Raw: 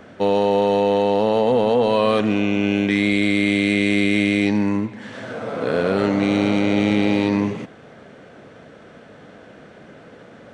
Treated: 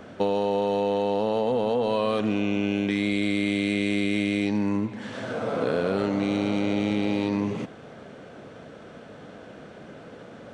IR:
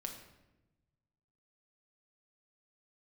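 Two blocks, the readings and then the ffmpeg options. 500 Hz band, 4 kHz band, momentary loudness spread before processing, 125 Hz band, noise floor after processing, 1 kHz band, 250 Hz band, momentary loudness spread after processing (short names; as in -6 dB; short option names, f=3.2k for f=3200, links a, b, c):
-6.5 dB, -6.5 dB, 8 LU, -6.0 dB, -45 dBFS, -6.5 dB, -6.0 dB, 20 LU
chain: -af "equalizer=f=1.9k:t=o:w=0.57:g=-4,acompressor=threshold=-21dB:ratio=6"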